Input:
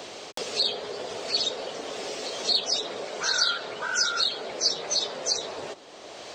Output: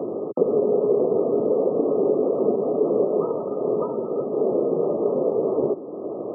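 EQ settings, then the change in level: HPF 130 Hz 24 dB/oct; brick-wall FIR low-pass 1300 Hz; resonant low shelf 590 Hz +12.5 dB, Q 1.5; +4.5 dB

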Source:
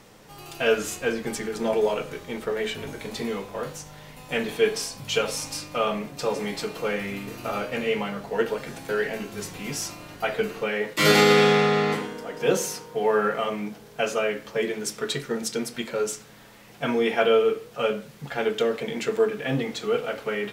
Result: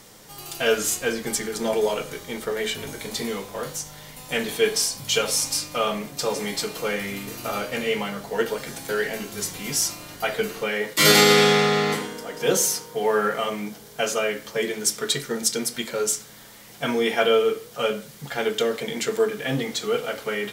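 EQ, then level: high shelf 3700 Hz +11.5 dB; notch 2600 Hz, Q 12; 0.0 dB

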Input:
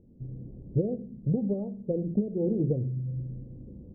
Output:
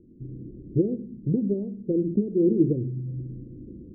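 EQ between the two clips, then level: synth low-pass 340 Hz, resonance Q 3.9; -1.0 dB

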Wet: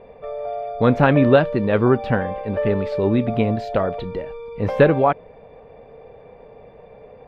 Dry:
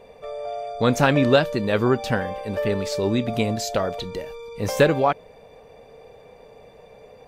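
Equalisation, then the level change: air absorption 470 m; +4.5 dB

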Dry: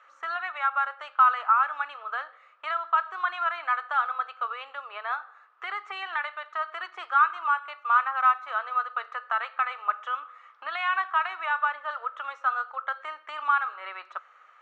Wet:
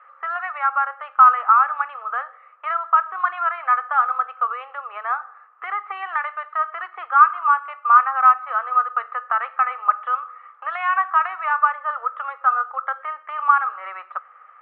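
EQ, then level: speaker cabinet 360–2600 Hz, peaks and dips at 500 Hz +7 dB, 790 Hz +7 dB, 1200 Hz +9 dB, 1900 Hz +4 dB; 0.0 dB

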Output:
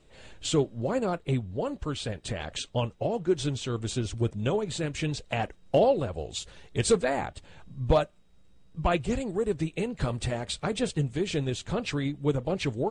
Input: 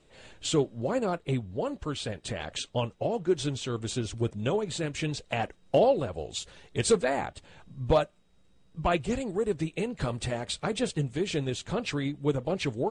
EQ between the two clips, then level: low shelf 100 Hz +6.5 dB; 0.0 dB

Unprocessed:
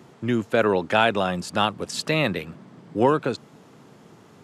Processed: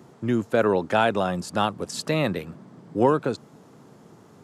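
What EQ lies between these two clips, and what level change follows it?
bell 2700 Hz -6.5 dB 1.5 oct; 0.0 dB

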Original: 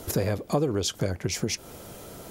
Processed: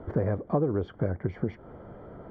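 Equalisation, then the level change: polynomial smoothing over 41 samples; air absorption 450 m; 0.0 dB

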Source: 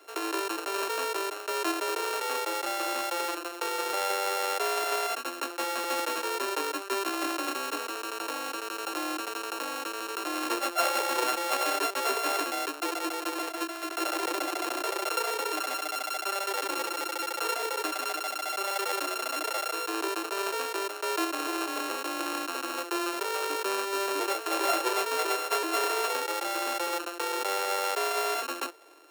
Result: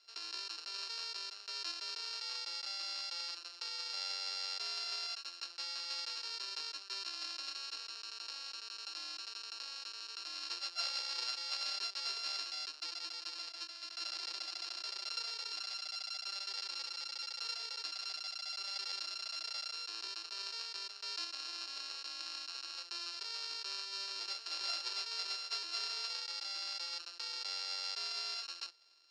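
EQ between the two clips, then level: band-pass 4800 Hz, Q 9.4; air absorption 76 m; +11.0 dB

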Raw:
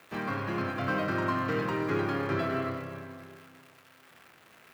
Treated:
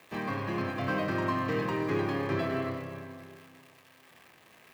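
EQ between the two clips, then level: notch 1400 Hz, Q 5.8; 0.0 dB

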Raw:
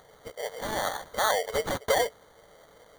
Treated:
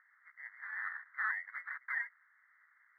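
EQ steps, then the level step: steep high-pass 1500 Hz 36 dB/oct; elliptic low-pass 1900 Hz, stop band 40 dB; 0.0 dB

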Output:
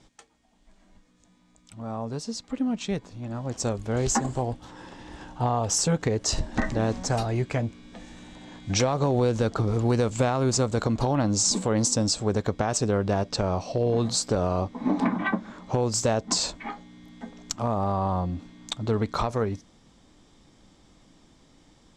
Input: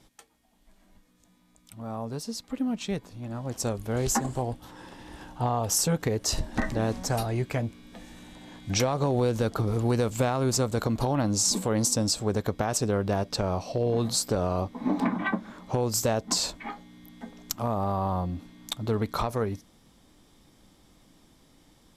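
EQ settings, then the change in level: Chebyshev low-pass 7600 Hz, order 3; +2.0 dB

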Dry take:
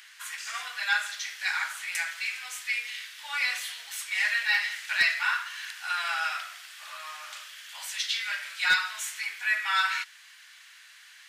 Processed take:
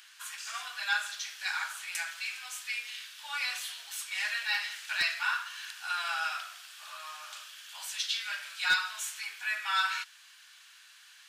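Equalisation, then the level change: thirty-one-band EQ 200 Hz -4 dB, 500 Hz -5 dB, 2000 Hz -9 dB; -2.0 dB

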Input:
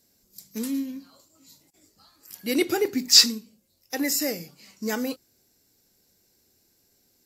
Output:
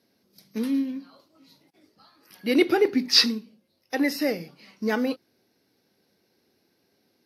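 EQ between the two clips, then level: running mean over 6 samples; HPF 160 Hz 12 dB/oct; +4.0 dB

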